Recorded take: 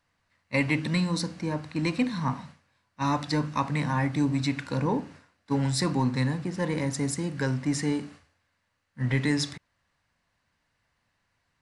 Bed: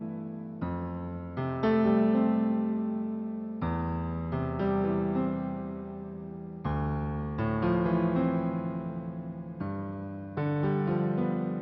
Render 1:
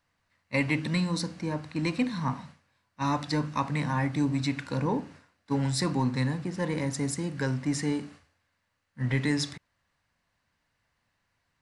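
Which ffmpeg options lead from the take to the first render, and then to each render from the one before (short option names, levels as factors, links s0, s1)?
-af "volume=0.841"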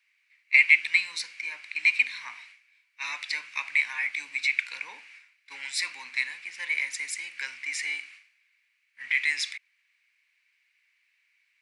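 -af "highpass=f=2300:t=q:w=8.9"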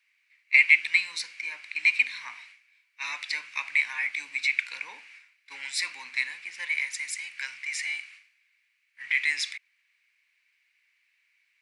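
-filter_complex "[0:a]asettb=1/sr,asplit=3[s0][s1][s2];[s0]atrim=end=6.654[s3];[s1]atrim=start=6.65:end=9.09,asetpts=PTS-STARTPTS,afade=t=in:d=0.004:c=qsin,afade=t=out:st=2.436:d=0.004:c=qsin,equalizer=f=350:t=o:w=1.1:g=-13[s4];[s2]atrim=start=9.086[s5];[s3][s4]acrossfade=d=0.004:c1=hsin:c2=qsin[s6];[s6][s5]acrossfade=d=0.004:c1=qsin:c2=hsin"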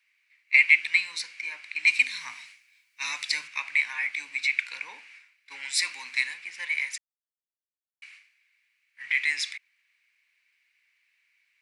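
-filter_complex "[0:a]asettb=1/sr,asplit=3[s0][s1][s2];[s0]atrim=end=1.874[s3];[s1]atrim=start=1.87:end=3.48,asetpts=PTS-STARTPTS,afade=t=in:d=0.004:c=qsin,afade=t=out:st=1.606:d=0.004:c=qsin,bass=f=250:g=11,treble=f=4000:g=10[s4];[s2]atrim=start=3.476[s5];[s3][s4]acrossfade=d=0.004:c1=hsin:c2=qsin[s6];[s6][s5]acrossfade=d=0.004:c1=qsin:c2=hsin,asettb=1/sr,asplit=3[s7][s8][s9];[s7]atrim=end=5.704[s10];[s8]atrim=start=5.7:end=6.34,asetpts=PTS-STARTPTS,afade=t=in:d=0.004:c=qsin,afade=t=out:st=0.636:d=0.004:c=qsin,highshelf=f=3600:g=6.5[s11];[s9]atrim=start=6.336[s12];[s10][s11]acrossfade=d=0.004:c1=hsin:c2=qsin[s13];[s13][s12]acrossfade=d=0.004:c1=qsin:c2=hsin,asplit=3[s14][s15][s16];[s14]atrim=end=6.98,asetpts=PTS-STARTPTS,afade=t=out:st=6.976:d=0.004:c=hsin[s17];[s15]atrim=start=6.98:end=8.02,asetpts=PTS-STARTPTS,volume=0[s18];[s16]atrim=start=8.02,asetpts=PTS-STARTPTS,afade=t=in:d=0.004:c=hsin[s19];[s17][s18][s19]concat=n=3:v=0:a=1"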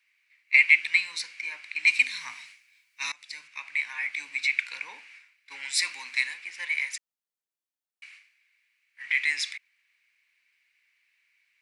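-filter_complex "[0:a]asettb=1/sr,asplit=3[s0][s1][s2];[s0]atrim=end=6.034[s3];[s1]atrim=start=6.03:end=9.14,asetpts=PTS-STARTPTS,afade=t=in:d=0.004:c=qsin,afade=t=out:st=3.106:d=0.004:c=qsin,highpass=190[s4];[s2]atrim=start=9.136[s5];[s3][s4]acrossfade=d=0.004:c1=hsin:c2=qsin[s6];[s6][s5]acrossfade=d=0.004:c1=qsin:c2=hsin,asplit=2[s7][s8];[s7]atrim=end=3.12,asetpts=PTS-STARTPTS,afade=t=out:st=3.116:d=0.004:c=hsin:silence=0.0668344[s9];[s8]atrim=start=3.12,asetpts=PTS-STARTPTS,afade=t=in:d=1.15:silence=0.0668344[s10];[s9][s10]concat=n=2:v=0:a=1"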